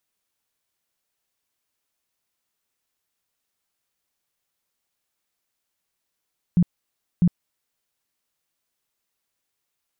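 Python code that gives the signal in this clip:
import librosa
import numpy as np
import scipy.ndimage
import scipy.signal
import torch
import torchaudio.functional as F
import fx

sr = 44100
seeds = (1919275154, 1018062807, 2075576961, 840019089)

y = fx.tone_burst(sr, hz=175.0, cycles=10, every_s=0.65, bursts=2, level_db=-12.5)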